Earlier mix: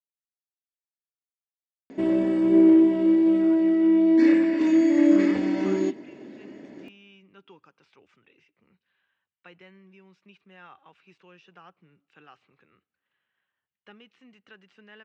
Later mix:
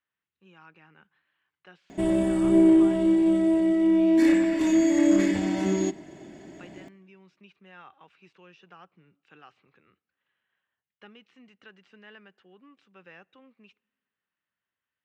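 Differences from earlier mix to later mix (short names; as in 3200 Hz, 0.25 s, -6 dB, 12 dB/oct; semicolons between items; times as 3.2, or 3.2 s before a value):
speech: entry -2.85 s; background: remove speaker cabinet 140–5100 Hz, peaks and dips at 170 Hz -8 dB, 250 Hz +8 dB, 490 Hz +9 dB, 700 Hz -7 dB, 3400 Hz -6 dB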